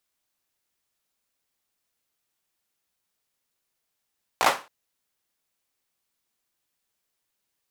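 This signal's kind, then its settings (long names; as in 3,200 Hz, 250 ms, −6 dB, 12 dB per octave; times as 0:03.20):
synth clap length 0.27 s, apart 17 ms, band 900 Hz, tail 0.30 s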